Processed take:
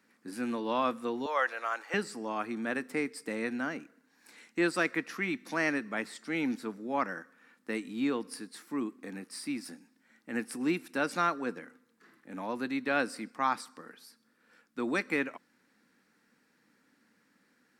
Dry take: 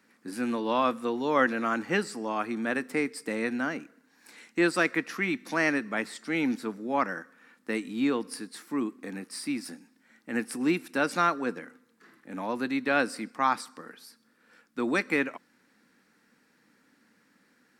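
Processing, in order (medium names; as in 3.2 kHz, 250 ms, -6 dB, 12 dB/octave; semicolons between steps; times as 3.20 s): 1.26–1.94 s: high-pass 540 Hz 24 dB/octave; trim -4 dB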